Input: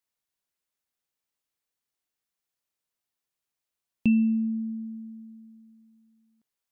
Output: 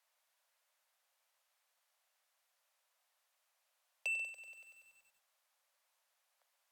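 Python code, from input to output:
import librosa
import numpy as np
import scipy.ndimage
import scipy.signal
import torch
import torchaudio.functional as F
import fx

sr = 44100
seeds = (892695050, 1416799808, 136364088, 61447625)

p1 = scipy.signal.sosfilt(scipy.signal.butter(12, 530.0, 'highpass', fs=sr, output='sos'), x)
p2 = fx.env_lowpass_down(p1, sr, base_hz=2400.0, full_db=-28.0)
p3 = fx.high_shelf(p2, sr, hz=2600.0, db=-8.0)
p4 = fx.over_compress(p3, sr, threshold_db=-45.0, ratio=-0.5)
p5 = p3 + (p4 * 10.0 ** (-0.5 / 20.0))
p6 = 10.0 ** (-38.0 / 20.0) * np.tanh(p5 / 10.0 ** (-38.0 / 20.0))
p7 = p6 + 10.0 ** (-11.5 / 20.0) * np.pad(p6, (int(137 * sr / 1000.0), 0))[:len(p6)]
p8 = fx.echo_crushed(p7, sr, ms=95, feedback_pct=80, bits=12, wet_db=-11.0)
y = p8 * 10.0 ** (5.5 / 20.0)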